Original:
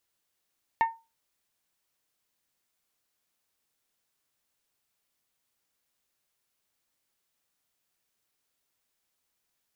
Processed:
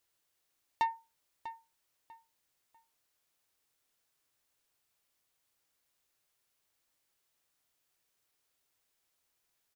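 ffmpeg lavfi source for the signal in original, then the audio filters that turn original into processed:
-f lavfi -i "aevalsrc='0.141*pow(10,-3*t/0.27)*sin(2*PI*909*t)+0.0531*pow(10,-3*t/0.166)*sin(2*PI*1818*t)+0.02*pow(10,-3*t/0.146)*sin(2*PI*2181.6*t)+0.0075*pow(10,-3*t/0.125)*sin(2*PI*2727*t)+0.00282*pow(10,-3*t/0.102)*sin(2*PI*3636*t)':d=0.89:s=44100"
-filter_complex "[0:a]equalizer=f=210:w=4.8:g=-8,asoftclip=type=tanh:threshold=0.0708,asplit=2[s0][s1];[s1]adelay=645,lowpass=f=3800:p=1,volume=0.224,asplit=2[s2][s3];[s3]adelay=645,lowpass=f=3800:p=1,volume=0.27,asplit=2[s4][s5];[s5]adelay=645,lowpass=f=3800:p=1,volume=0.27[s6];[s0][s2][s4][s6]amix=inputs=4:normalize=0"

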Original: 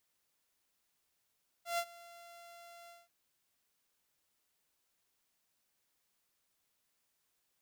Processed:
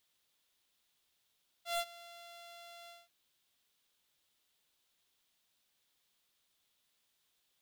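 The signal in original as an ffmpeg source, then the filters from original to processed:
-f lavfi -i "aevalsrc='0.0376*(2*mod(687*t,1)-1)':d=1.432:s=44100,afade=t=in:d=0.132,afade=t=out:st=0.132:d=0.064:silence=0.0841,afade=t=out:st=1.24:d=0.192"
-af "equalizer=f=3500:t=o:w=0.68:g=9,aeval=exprs='0.0376*(abs(mod(val(0)/0.0376+3,4)-2)-1)':c=same"

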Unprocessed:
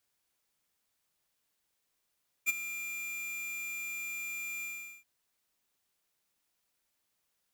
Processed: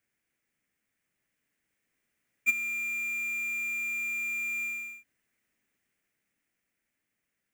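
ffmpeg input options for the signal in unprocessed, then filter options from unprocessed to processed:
-f lavfi -i "aevalsrc='0.0531*(2*lt(mod(2390*t,1),0.5)-1)':d=2.578:s=44100,afade=t=in:d=0.032,afade=t=out:st=0.032:d=0.022:silence=0.211,afade=t=out:st=2.17:d=0.408"
-af "equalizer=f=125:t=o:w=1:g=3,equalizer=f=250:t=o:w=1:g=7,equalizer=f=1000:t=o:w=1:g=-8,equalizer=f=2000:t=o:w=1:g=11,equalizer=f=4000:t=o:w=1:g=-11,equalizer=f=16000:t=o:w=1:g=-8,dynaudnorm=f=260:g=13:m=1.5"

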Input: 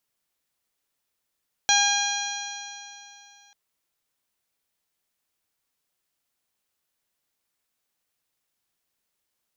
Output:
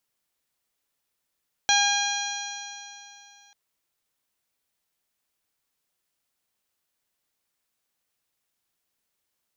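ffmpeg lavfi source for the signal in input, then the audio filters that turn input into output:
-f lavfi -i "aevalsrc='0.075*pow(10,-3*t/2.85)*sin(2*PI*809.4*t)+0.0668*pow(10,-3*t/2.85)*sin(2*PI*1621.23*t)+0.0473*pow(10,-3*t/2.85)*sin(2*PI*2437.9*t)+0.0668*pow(10,-3*t/2.85)*sin(2*PI*3261.79*t)+0.0668*pow(10,-3*t/2.85)*sin(2*PI*4095.25*t)+0.0119*pow(10,-3*t/2.85)*sin(2*PI*4940.6*t)+0.0891*pow(10,-3*t/2.85)*sin(2*PI*5800.08*t)+0.0335*pow(10,-3*t/2.85)*sin(2*PI*6675.89*t)':d=1.84:s=44100"
-filter_complex "[0:a]acrossover=split=6500[s0][s1];[s1]acompressor=threshold=0.01:ratio=4:attack=1:release=60[s2];[s0][s2]amix=inputs=2:normalize=0"

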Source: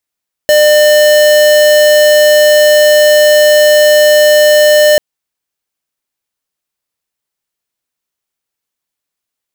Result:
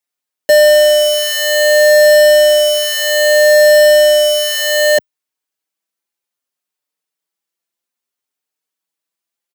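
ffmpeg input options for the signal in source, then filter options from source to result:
-f lavfi -i "aevalsrc='0.501*(2*lt(mod(600*t,1),0.5)-1)':d=4.49:s=44100"
-filter_complex "[0:a]highpass=190,asplit=2[s0][s1];[s1]adelay=5.2,afreqshift=0.62[s2];[s0][s2]amix=inputs=2:normalize=1"

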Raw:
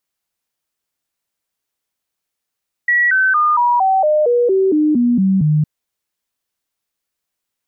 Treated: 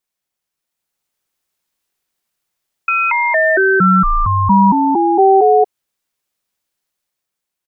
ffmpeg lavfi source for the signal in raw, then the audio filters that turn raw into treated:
-f lavfi -i "aevalsrc='0.299*clip(min(mod(t,0.23),0.23-mod(t,0.23))/0.005,0,1)*sin(2*PI*1930*pow(2,-floor(t/0.23)/3)*mod(t,0.23))':d=2.76:s=44100"
-af "aecho=1:1:5.5:0.52,dynaudnorm=f=170:g=11:m=2.11,aeval=exprs='val(0)*sin(2*PI*580*n/s)':c=same"

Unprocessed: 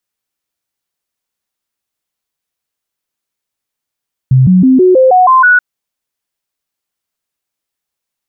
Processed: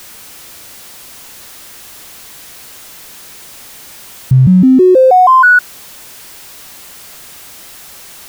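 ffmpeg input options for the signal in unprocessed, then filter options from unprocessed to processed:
-f lavfi -i "aevalsrc='0.708*clip(min(mod(t,0.16),0.16-mod(t,0.16))/0.005,0,1)*sin(2*PI*130*pow(2,floor(t/0.16)/2)*mod(t,0.16))':d=1.28:s=44100"
-af "aeval=exprs='val(0)+0.5*0.0398*sgn(val(0))':c=same"

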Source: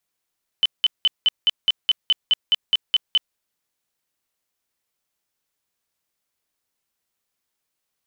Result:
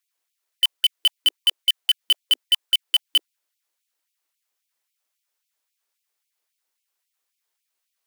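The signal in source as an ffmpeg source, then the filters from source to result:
-f lavfi -i "aevalsrc='0.237*sin(2*PI*3030*mod(t,0.21))*lt(mod(t,0.21),78/3030)':d=2.73:s=44100"
-filter_complex "[0:a]acrossover=split=410[s0][s1];[s0]flanger=delay=15.5:depth=3:speed=0.28[s2];[s1]acrusher=bits=2:mode=log:mix=0:aa=0.000001[s3];[s2][s3]amix=inputs=2:normalize=0,afftfilt=real='re*gte(b*sr/1024,250*pow(2200/250,0.5+0.5*sin(2*PI*3.7*pts/sr)))':imag='im*gte(b*sr/1024,250*pow(2200/250,0.5+0.5*sin(2*PI*3.7*pts/sr)))':win_size=1024:overlap=0.75"

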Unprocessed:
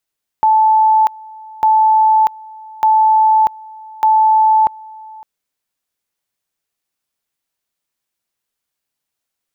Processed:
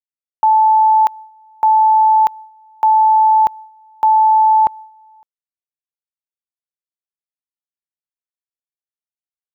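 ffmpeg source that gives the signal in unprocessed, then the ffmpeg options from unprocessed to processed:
-f lavfi -i "aevalsrc='pow(10,(-7.5-24*gte(mod(t,1.2),0.64))/20)*sin(2*PI*873*t)':d=4.8:s=44100"
-af "agate=range=0.0224:threshold=0.0447:ratio=3:detection=peak"

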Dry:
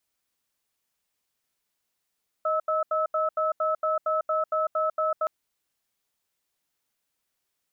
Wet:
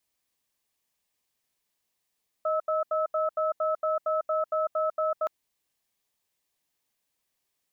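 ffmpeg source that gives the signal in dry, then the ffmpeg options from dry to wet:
-f lavfi -i "aevalsrc='0.0562*(sin(2*PI*626*t)+sin(2*PI*1300*t))*clip(min(mod(t,0.23),0.15-mod(t,0.23))/0.005,0,1)':d=2.82:s=44100"
-af "bandreject=f=1400:w=6.2"

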